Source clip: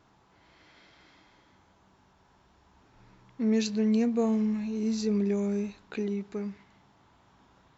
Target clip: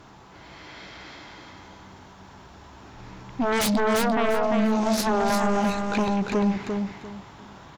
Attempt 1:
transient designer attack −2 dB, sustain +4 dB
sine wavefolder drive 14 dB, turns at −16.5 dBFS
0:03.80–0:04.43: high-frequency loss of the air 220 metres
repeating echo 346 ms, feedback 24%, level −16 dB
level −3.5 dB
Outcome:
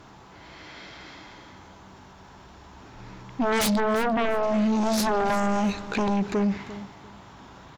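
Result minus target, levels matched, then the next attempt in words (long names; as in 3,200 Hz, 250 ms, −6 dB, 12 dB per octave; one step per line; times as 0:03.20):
echo-to-direct −11.5 dB
transient designer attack −2 dB, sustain +4 dB
sine wavefolder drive 14 dB, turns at −16.5 dBFS
0:03.80–0:04.43: high-frequency loss of the air 220 metres
repeating echo 346 ms, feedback 24%, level −4.5 dB
level −3.5 dB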